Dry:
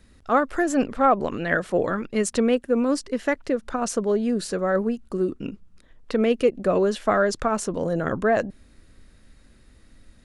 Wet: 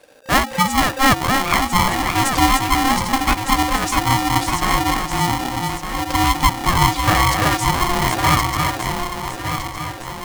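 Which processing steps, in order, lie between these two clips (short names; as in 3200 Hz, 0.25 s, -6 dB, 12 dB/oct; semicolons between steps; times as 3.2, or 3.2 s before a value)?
regenerating reverse delay 0.605 s, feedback 64%, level -4.5 dB; notches 60/120/180/240/300 Hz; polarity switched at an audio rate 530 Hz; gain +4 dB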